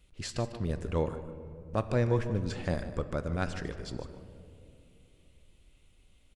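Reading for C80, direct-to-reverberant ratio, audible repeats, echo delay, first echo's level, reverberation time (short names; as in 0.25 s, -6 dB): 10.5 dB, 9.0 dB, 1, 0.15 s, -13.5 dB, 2.7 s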